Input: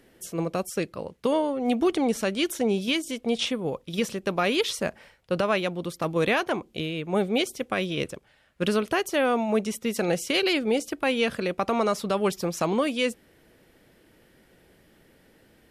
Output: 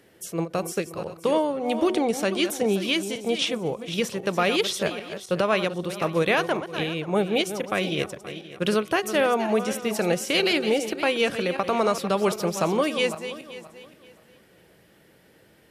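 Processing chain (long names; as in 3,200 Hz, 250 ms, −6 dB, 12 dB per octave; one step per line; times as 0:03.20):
feedback delay that plays each chunk backwards 263 ms, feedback 48%, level −10.5 dB
high-pass filter 80 Hz
parametric band 250 Hz −8.5 dB 0.22 octaves
hum removal 370.1 Hz, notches 5
every ending faded ahead of time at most 300 dB per second
level +2 dB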